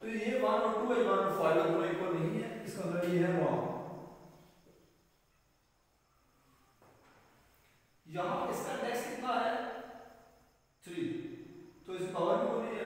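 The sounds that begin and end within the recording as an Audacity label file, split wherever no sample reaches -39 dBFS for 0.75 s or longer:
8.140000	9.900000	sound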